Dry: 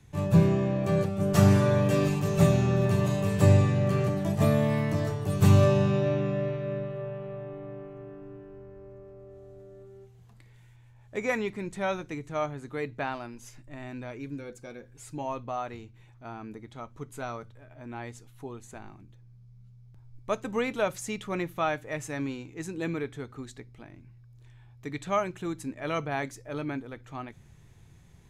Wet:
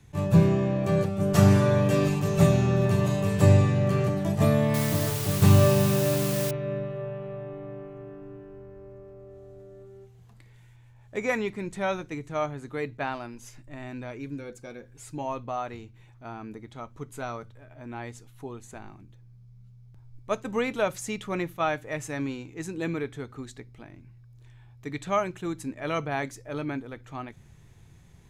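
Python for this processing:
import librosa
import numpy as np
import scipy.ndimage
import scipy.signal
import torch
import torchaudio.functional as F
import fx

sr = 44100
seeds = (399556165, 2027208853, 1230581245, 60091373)

y = fx.quant_dither(x, sr, seeds[0], bits=6, dither='triangular', at=(4.74, 6.51))
y = fx.attack_slew(y, sr, db_per_s=560.0)
y = y * 10.0 ** (1.5 / 20.0)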